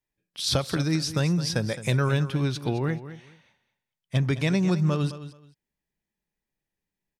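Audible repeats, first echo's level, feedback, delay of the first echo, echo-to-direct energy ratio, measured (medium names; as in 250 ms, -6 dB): 2, -13.5 dB, 20%, 214 ms, -13.5 dB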